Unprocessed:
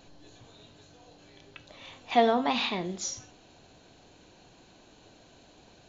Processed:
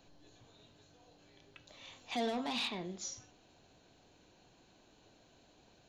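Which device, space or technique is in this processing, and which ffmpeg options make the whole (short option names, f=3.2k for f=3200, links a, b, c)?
one-band saturation: -filter_complex "[0:a]acrossover=split=400|3500[a][b][c];[b]asoftclip=type=tanh:threshold=-28.5dB[d];[a][d][c]amix=inputs=3:normalize=0,asettb=1/sr,asplit=3[e][f][g];[e]atrim=end=1.674[h];[f]atrim=start=1.67:end=2.68,asetpts=PTS-STARTPTS,afade=t=in:d=0.004:c=qsin,afade=t=out:st=1.006:d=0.004:c=qsin,highshelf=f=4.8k:g=11[i];[g]atrim=start=2.676[j];[h][i]acrossfade=d=0.004:c1=hsin:c2=qsin[k];[k][j]acrossfade=d=0.004:c1=qsin:c2=hsin,volume=-8.5dB"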